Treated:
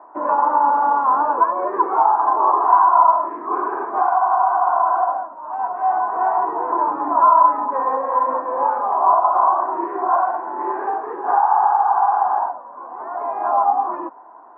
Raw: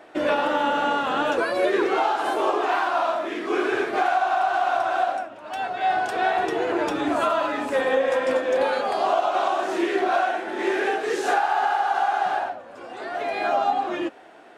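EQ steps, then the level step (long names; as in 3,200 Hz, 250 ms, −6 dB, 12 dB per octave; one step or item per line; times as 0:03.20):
flat-topped band-pass 620 Hz, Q 0.53
low-pass with resonance 1,000 Hz, resonance Q 11
parametric band 470 Hz −8 dB 1.2 octaves
0.0 dB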